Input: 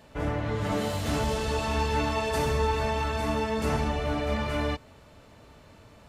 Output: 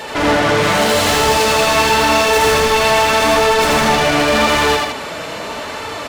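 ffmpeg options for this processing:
ffmpeg -i in.wav -filter_complex "[0:a]flanger=delay=2.2:depth=4.2:regen=37:speed=0.86:shape=sinusoidal,asplit=2[link_01][link_02];[link_02]highpass=frequency=720:poles=1,volume=33dB,asoftclip=type=tanh:threshold=-17dB[link_03];[link_01][link_03]amix=inputs=2:normalize=0,lowpass=frequency=7800:poles=1,volume=-6dB,aecho=1:1:81.63|157.4:0.794|0.447,volume=7dB" out.wav

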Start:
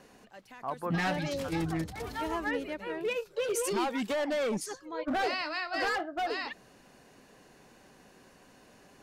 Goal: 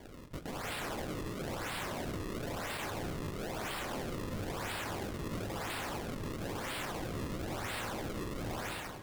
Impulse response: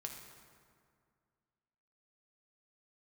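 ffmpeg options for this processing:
-filter_complex "[0:a]highpass=900,dynaudnorm=framelen=160:gausssize=7:maxgain=16.5dB,crystalizer=i=4:c=0,acrusher=samples=33:mix=1:aa=0.000001:lfo=1:lforange=52.8:lforate=1,aeval=exprs='(mod(75*val(0)+1,2)-1)/75':channel_layout=same,asplit=2[link_01][link_02];[1:a]atrim=start_sample=2205,asetrate=34398,aresample=44100[link_03];[link_02][link_03]afir=irnorm=-1:irlink=0,volume=-3dB[link_04];[link_01][link_04]amix=inputs=2:normalize=0"

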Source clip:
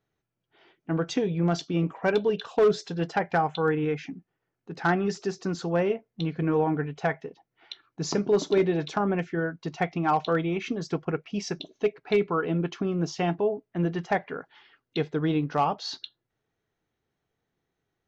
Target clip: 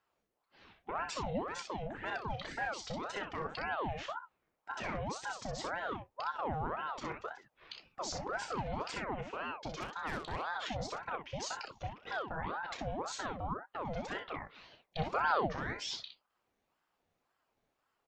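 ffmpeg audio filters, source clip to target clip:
ffmpeg -i in.wav -filter_complex "[0:a]asettb=1/sr,asplit=3[link_01][link_02][link_03];[link_01]atrim=end=9.274[link_04];[link_02]atrim=start=9.27:end=10.56,asetpts=PTS-STARTPTS,afade=type=in:duration=0.004:curve=qsin,afade=type=out:start_time=1.286:duration=0.004:curve=qsin,aeval=exprs='0.188*(cos(1*acos(clip(val(0)/0.188,-1,1)))-cos(1*PI/2))+0.0376*(cos(6*acos(clip(val(0)/0.188,-1,1)))-cos(6*PI/2))+0.0188*(cos(8*acos(clip(val(0)/0.188,-1,1)))-cos(8*PI/2))':channel_layout=same[link_05];[link_03]atrim=start=10.556[link_06];[link_04][link_05]acrossfade=duration=0.004:curve1=hsin:curve2=qsin[link_07];[link_07][link_06]acrossfade=duration=0.004:curve1=qsin:curve2=hsin,acompressor=threshold=-29dB:ratio=6,alimiter=level_in=6.5dB:limit=-24dB:level=0:latency=1:release=22,volume=-6.5dB,asplit=3[link_08][link_09][link_10];[link_08]afade=type=out:start_time=14.98:duration=0.02[link_11];[link_09]acontrast=67,afade=type=in:start_time=14.98:duration=0.02,afade=type=out:start_time=15.45:duration=0.02[link_12];[link_10]afade=type=in:start_time=15.45:duration=0.02[link_13];[link_11][link_12][link_13]amix=inputs=3:normalize=0,asplit=2[link_14][link_15];[link_15]aecho=0:1:32|62:0.398|0.473[link_16];[link_14][link_16]amix=inputs=2:normalize=0,aeval=exprs='val(0)*sin(2*PI*770*n/s+770*0.6/1.9*sin(2*PI*1.9*n/s))':channel_layout=same,volume=1dB" out.wav

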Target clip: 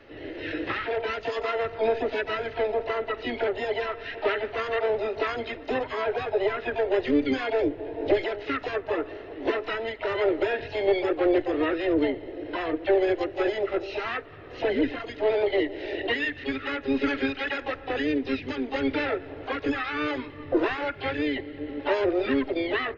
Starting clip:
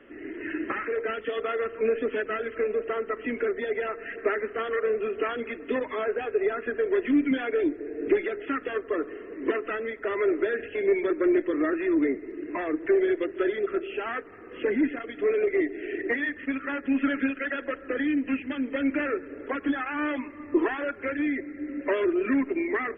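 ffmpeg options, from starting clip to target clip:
ffmpeg -i in.wav -filter_complex "[0:a]lowshelf=frequency=130:width_type=q:width=3:gain=7.5,asplit=3[link_01][link_02][link_03];[link_02]asetrate=66075,aresample=44100,atempo=0.66742,volume=-5dB[link_04];[link_03]asetrate=88200,aresample=44100,atempo=0.5,volume=-15dB[link_05];[link_01][link_04][link_05]amix=inputs=3:normalize=0" out.wav

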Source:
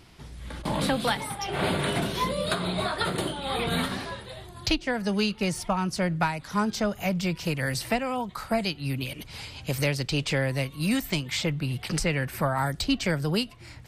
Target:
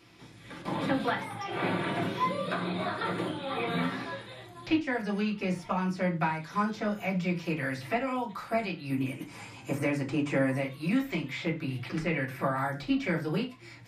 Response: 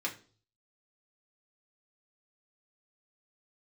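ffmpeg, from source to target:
-filter_complex "[0:a]acrossover=split=2600[link_01][link_02];[link_02]acompressor=threshold=-45dB:ratio=4:attack=1:release=60[link_03];[link_01][link_03]amix=inputs=2:normalize=0,asettb=1/sr,asplit=3[link_04][link_05][link_06];[link_04]atrim=end=8.904[link_07];[link_05]atrim=start=8.9:end=10.61,asetpts=PTS-STARTPTS,afade=type=in:duration=0.004:curve=qsin,afade=type=out:start_time=1.706:duration=0.004:curve=qsin,equalizer=frequency=250:width_type=o:width=1:gain=6,equalizer=frequency=1000:width_type=o:width=1:gain=4,equalizer=frequency=4000:width_type=o:width=1:gain=-9,equalizer=frequency=8000:width_type=o:width=1:gain=10[link_08];[link_06]atrim=start=10.606[link_09];[link_07][link_08]acrossfade=duration=0.004:curve1=hsin:curve2=qsin[link_10];[link_10][link_09]acrossfade=duration=0.004:curve1=qsin:curve2=hsin[link_11];[1:a]atrim=start_sample=2205,afade=type=out:start_time=0.17:duration=0.01,atrim=end_sample=7938[link_12];[link_11][link_12]afir=irnorm=-1:irlink=0,volume=-5.5dB"

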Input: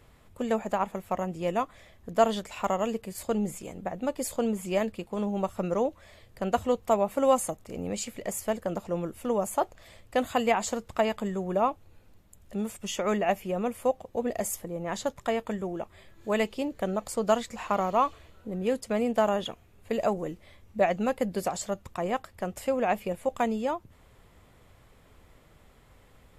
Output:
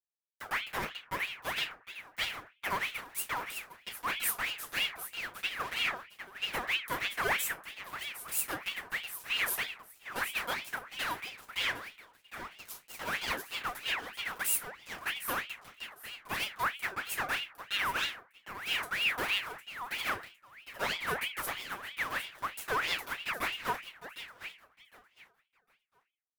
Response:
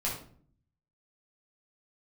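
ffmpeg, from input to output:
-filter_complex "[0:a]aecho=1:1:7.3:0.45,acrossover=split=390[link_01][link_02];[link_01]acompressor=mode=upward:threshold=-36dB:ratio=2.5[link_03];[link_03][link_02]amix=inputs=2:normalize=0,alimiter=limit=-15dB:level=0:latency=1:release=151,aexciter=amount=7.7:drive=9.7:freq=11000,aeval=exprs='val(0)*gte(abs(val(0)),0.0708)':channel_layout=same,aecho=1:1:757|1514|2271:0.282|0.062|0.0136[link_04];[1:a]atrim=start_sample=2205,asetrate=88200,aresample=44100[link_05];[link_04][link_05]afir=irnorm=-1:irlink=0,aeval=exprs='val(0)*sin(2*PI*1900*n/s+1900*0.5/3.1*sin(2*PI*3.1*n/s))':channel_layout=same,volume=-5dB"

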